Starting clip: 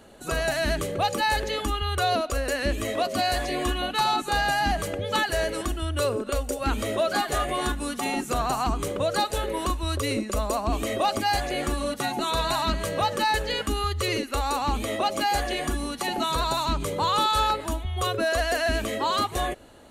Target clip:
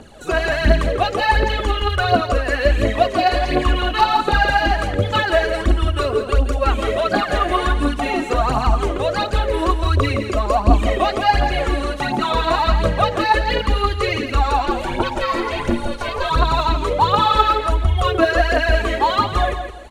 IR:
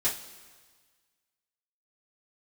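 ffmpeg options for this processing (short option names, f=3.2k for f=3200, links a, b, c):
-filter_complex "[0:a]asplit=3[a][b][c];[a]afade=t=out:st=14.65:d=0.02[d];[b]aeval=exprs='val(0)*sin(2*PI*290*n/s)':c=same,afade=t=in:st=14.65:d=0.02,afade=t=out:st=16.29:d=0.02[e];[c]afade=t=in:st=16.29:d=0.02[f];[d][e][f]amix=inputs=3:normalize=0,acrossover=split=3600[g][h];[h]acompressor=threshold=-49dB:ratio=6[i];[g][i]amix=inputs=2:normalize=0,lowpass=8.8k,aphaser=in_gain=1:out_gain=1:delay=3.2:decay=0.67:speed=1.4:type=triangular,aecho=1:1:167|334|501:0.376|0.0977|0.0254,volume=5dB"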